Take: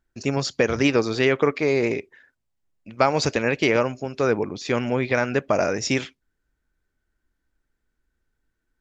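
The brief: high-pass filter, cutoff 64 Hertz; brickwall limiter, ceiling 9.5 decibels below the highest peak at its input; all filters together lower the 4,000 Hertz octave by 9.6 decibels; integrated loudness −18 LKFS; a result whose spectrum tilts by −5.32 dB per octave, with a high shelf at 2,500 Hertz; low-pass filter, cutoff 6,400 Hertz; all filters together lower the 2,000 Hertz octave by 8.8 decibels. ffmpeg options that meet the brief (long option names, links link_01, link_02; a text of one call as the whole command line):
ffmpeg -i in.wav -af "highpass=64,lowpass=6400,equalizer=frequency=2000:width_type=o:gain=-7.5,highshelf=frequency=2500:gain=-5,equalizer=frequency=4000:width_type=o:gain=-5,volume=10dB,alimiter=limit=-6dB:level=0:latency=1" out.wav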